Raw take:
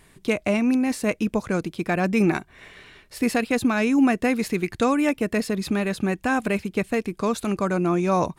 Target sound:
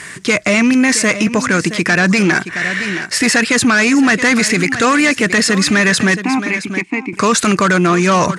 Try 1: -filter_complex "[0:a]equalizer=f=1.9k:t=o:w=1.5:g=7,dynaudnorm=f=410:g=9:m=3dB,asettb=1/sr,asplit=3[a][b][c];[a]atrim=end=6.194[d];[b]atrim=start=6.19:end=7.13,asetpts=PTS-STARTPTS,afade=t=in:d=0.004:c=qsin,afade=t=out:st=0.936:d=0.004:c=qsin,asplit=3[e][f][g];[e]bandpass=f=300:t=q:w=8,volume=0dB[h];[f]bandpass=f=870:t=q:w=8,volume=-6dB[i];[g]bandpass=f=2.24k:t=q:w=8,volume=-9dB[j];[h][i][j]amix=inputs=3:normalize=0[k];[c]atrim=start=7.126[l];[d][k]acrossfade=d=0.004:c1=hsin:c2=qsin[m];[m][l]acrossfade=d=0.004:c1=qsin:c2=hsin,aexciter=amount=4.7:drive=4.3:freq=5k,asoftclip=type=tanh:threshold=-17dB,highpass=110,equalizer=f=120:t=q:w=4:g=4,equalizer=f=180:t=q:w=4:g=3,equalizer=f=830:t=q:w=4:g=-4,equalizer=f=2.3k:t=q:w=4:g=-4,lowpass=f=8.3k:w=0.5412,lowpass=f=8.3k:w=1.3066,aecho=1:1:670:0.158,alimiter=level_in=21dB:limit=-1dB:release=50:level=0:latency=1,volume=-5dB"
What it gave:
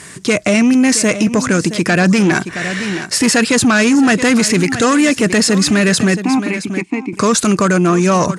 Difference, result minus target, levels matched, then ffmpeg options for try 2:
2000 Hz band -4.0 dB
-filter_complex "[0:a]equalizer=f=1.9k:t=o:w=1.5:g=17,dynaudnorm=f=410:g=9:m=3dB,asettb=1/sr,asplit=3[a][b][c];[a]atrim=end=6.194[d];[b]atrim=start=6.19:end=7.13,asetpts=PTS-STARTPTS,afade=t=in:d=0.004:c=qsin,afade=t=out:st=0.936:d=0.004:c=qsin,asplit=3[e][f][g];[e]bandpass=f=300:t=q:w=8,volume=0dB[h];[f]bandpass=f=870:t=q:w=8,volume=-6dB[i];[g]bandpass=f=2.24k:t=q:w=8,volume=-9dB[j];[h][i][j]amix=inputs=3:normalize=0[k];[c]atrim=start=7.126[l];[d][k]acrossfade=d=0.004:c1=hsin:c2=qsin[m];[m][l]acrossfade=d=0.004:c1=qsin:c2=hsin,aexciter=amount=4.7:drive=4.3:freq=5k,asoftclip=type=tanh:threshold=-17dB,highpass=110,equalizer=f=120:t=q:w=4:g=4,equalizer=f=180:t=q:w=4:g=3,equalizer=f=830:t=q:w=4:g=-4,equalizer=f=2.3k:t=q:w=4:g=-4,lowpass=f=8.3k:w=0.5412,lowpass=f=8.3k:w=1.3066,aecho=1:1:670:0.158,alimiter=level_in=21dB:limit=-1dB:release=50:level=0:latency=1,volume=-5dB"

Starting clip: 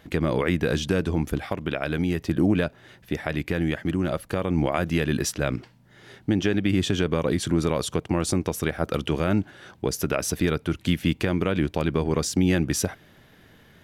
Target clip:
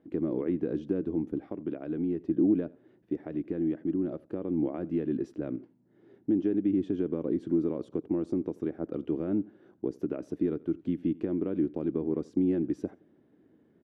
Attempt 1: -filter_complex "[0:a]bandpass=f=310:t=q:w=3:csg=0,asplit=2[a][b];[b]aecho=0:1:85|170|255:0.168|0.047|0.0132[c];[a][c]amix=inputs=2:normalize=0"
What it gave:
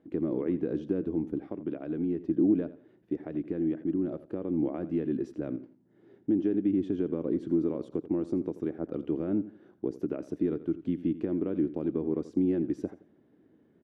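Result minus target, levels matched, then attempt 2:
echo-to-direct +7.5 dB
-filter_complex "[0:a]bandpass=f=310:t=q:w=3:csg=0,asplit=2[a][b];[b]aecho=0:1:85|170:0.0708|0.0198[c];[a][c]amix=inputs=2:normalize=0"

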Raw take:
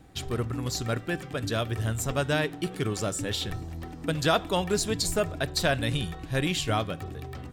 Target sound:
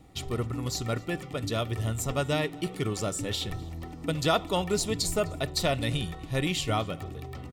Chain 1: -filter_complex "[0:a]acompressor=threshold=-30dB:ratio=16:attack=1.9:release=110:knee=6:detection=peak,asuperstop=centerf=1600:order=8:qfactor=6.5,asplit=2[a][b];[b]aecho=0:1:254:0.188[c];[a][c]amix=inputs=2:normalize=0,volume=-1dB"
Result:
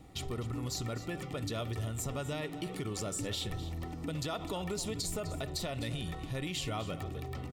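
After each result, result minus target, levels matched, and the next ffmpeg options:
compressor: peak gain reduction +15 dB; echo-to-direct +11 dB
-filter_complex "[0:a]asuperstop=centerf=1600:order=8:qfactor=6.5,asplit=2[a][b];[b]aecho=0:1:254:0.188[c];[a][c]amix=inputs=2:normalize=0,volume=-1dB"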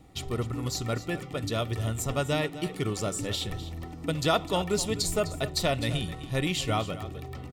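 echo-to-direct +11 dB
-filter_complex "[0:a]asuperstop=centerf=1600:order=8:qfactor=6.5,asplit=2[a][b];[b]aecho=0:1:254:0.0531[c];[a][c]amix=inputs=2:normalize=0,volume=-1dB"

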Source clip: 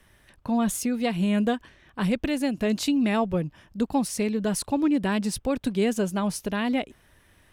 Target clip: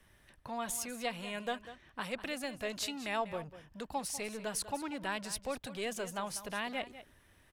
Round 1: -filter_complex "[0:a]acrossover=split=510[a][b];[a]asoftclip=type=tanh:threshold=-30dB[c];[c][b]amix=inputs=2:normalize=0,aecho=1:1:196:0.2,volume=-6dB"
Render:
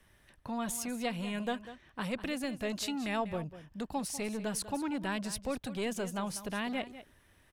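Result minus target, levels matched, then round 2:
soft clip: distortion -4 dB
-filter_complex "[0:a]acrossover=split=510[a][b];[a]asoftclip=type=tanh:threshold=-40.5dB[c];[c][b]amix=inputs=2:normalize=0,aecho=1:1:196:0.2,volume=-6dB"

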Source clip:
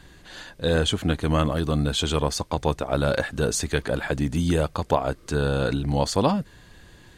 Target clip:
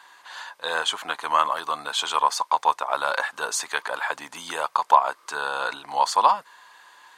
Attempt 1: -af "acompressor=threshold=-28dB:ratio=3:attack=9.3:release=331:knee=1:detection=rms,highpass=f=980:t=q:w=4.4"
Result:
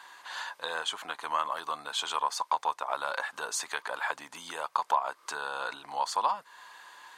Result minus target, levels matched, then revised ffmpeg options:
compressor: peak gain reduction +11.5 dB
-af "highpass=f=980:t=q:w=4.4"

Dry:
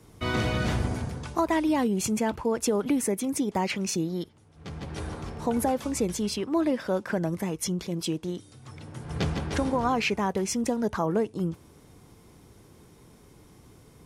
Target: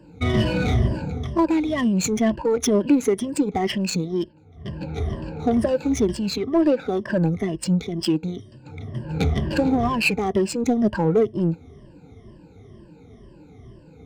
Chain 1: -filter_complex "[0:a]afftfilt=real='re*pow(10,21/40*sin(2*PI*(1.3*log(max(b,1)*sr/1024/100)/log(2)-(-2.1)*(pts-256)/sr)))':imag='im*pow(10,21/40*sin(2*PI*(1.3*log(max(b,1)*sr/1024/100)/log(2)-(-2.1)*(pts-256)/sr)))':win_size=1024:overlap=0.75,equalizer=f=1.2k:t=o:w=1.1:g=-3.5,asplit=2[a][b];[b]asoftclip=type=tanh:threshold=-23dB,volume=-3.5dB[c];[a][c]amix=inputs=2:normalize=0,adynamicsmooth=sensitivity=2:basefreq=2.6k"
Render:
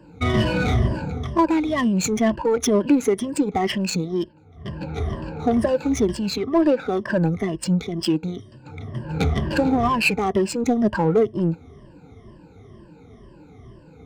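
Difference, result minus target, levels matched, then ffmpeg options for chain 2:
1000 Hz band +3.0 dB
-filter_complex "[0:a]afftfilt=real='re*pow(10,21/40*sin(2*PI*(1.3*log(max(b,1)*sr/1024/100)/log(2)-(-2.1)*(pts-256)/sr)))':imag='im*pow(10,21/40*sin(2*PI*(1.3*log(max(b,1)*sr/1024/100)/log(2)-(-2.1)*(pts-256)/sr)))':win_size=1024:overlap=0.75,equalizer=f=1.2k:t=o:w=1.1:g=-9.5,asplit=2[a][b];[b]asoftclip=type=tanh:threshold=-23dB,volume=-3.5dB[c];[a][c]amix=inputs=2:normalize=0,adynamicsmooth=sensitivity=2:basefreq=2.6k"

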